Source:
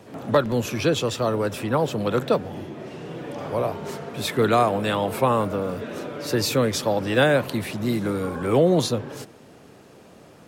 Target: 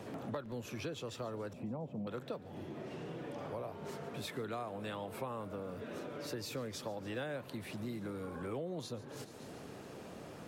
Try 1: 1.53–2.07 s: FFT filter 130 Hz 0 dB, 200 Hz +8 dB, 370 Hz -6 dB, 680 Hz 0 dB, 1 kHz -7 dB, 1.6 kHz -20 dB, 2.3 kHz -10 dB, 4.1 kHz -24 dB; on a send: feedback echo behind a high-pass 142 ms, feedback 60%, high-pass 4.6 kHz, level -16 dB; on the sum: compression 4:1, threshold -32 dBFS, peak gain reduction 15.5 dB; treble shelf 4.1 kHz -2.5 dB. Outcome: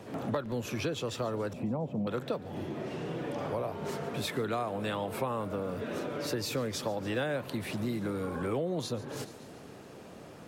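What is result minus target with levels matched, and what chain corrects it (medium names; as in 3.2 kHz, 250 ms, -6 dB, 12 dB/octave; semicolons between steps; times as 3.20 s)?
compression: peak gain reduction -8 dB
1.53–2.07 s: FFT filter 130 Hz 0 dB, 200 Hz +8 dB, 370 Hz -6 dB, 680 Hz 0 dB, 1 kHz -7 dB, 1.6 kHz -20 dB, 2.3 kHz -10 dB, 4.1 kHz -24 dB; on a send: feedback echo behind a high-pass 142 ms, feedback 60%, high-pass 4.6 kHz, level -16 dB; on the sum: compression 4:1, threshold -43 dBFS, peak gain reduction 24 dB; treble shelf 4.1 kHz -2.5 dB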